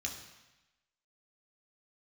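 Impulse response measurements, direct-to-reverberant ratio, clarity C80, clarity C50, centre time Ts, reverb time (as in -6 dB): 0.0 dB, 8.5 dB, 6.5 dB, 31 ms, 1.0 s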